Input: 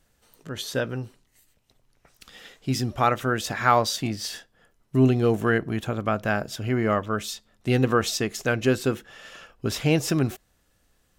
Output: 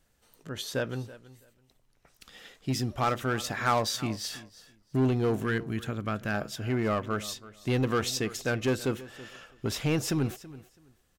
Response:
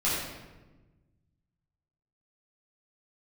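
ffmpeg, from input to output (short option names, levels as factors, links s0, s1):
-filter_complex "[0:a]asettb=1/sr,asplit=3[s0][s1][s2];[s0]atrim=end=5.434[s3];[s1]atrim=start=5.43:end=6.34,asetpts=PTS-STARTPTS,afade=t=in:d=0.004:c=qsin,afade=t=out:st=0.906:d=0.004:c=qsin,equalizer=f=700:w=0.96:g=-7.5[s4];[s2]atrim=start=6.336[s5];[s3][s4]acrossfade=d=0.004:c1=hsin:c2=qsin[s6];[s6][s5]acrossfade=d=0.004:c1=qsin:c2=hsin,asplit=2[s7][s8];[s8]aeval=exprs='0.106*(abs(mod(val(0)/0.106+3,4)-2)-1)':c=same,volume=0.562[s9];[s7][s9]amix=inputs=2:normalize=0,aecho=1:1:329|658:0.126|0.0239,volume=0.422"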